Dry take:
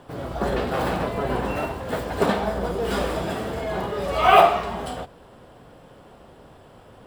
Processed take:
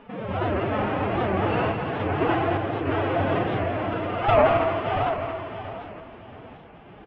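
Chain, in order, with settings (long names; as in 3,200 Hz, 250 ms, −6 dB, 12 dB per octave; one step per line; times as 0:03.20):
variable-slope delta modulation 16 kbit/s
phase-vocoder pitch shift with formants kept +8.5 semitones
in parallel at −3 dB: compressor whose output falls as the input rises −31 dBFS
on the sum: repeating echo 676 ms, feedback 21%, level −6 dB
sample-and-hold tremolo
on a send: single-tap delay 217 ms −7.5 dB
on the sum: wow of a warped record 78 rpm, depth 160 cents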